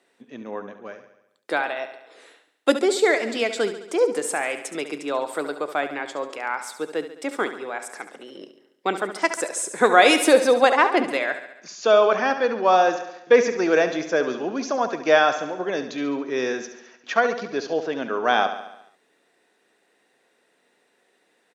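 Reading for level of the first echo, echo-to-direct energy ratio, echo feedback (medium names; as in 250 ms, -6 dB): -11.0 dB, -9.0 dB, 58%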